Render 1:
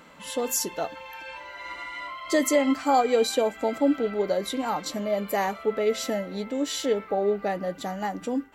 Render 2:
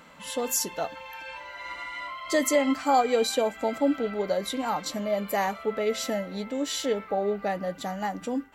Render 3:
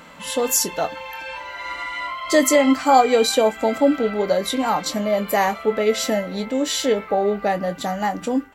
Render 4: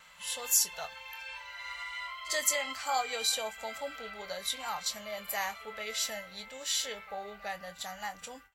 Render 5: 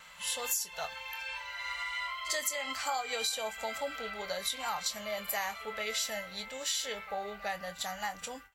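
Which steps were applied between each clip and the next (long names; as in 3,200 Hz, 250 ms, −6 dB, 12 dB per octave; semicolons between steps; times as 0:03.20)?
parametric band 360 Hz −5 dB 0.67 octaves
double-tracking delay 23 ms −11.5 dB; level +7.5 dB
guitar amp tone stack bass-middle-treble 10-0-10; backwards echo 51 ms −20 dB; noise gate with hold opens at −41 dBFS; level −5.5 dB
downward compressor 12 to 1, threshold −33 dBFS, peak gain reduction 13 dB; level +3.5 dB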